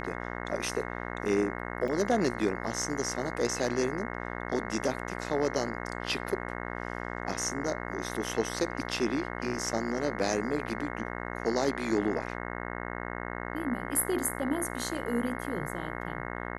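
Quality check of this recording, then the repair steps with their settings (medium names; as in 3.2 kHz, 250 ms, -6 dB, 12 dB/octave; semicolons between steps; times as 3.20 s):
buzz 60 Hz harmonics 36 -37 dBFS
1.88 s: dropout 3.8 ms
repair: de-hum 60 Hz, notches 36; interpolate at 1.88 s, 3.8 ms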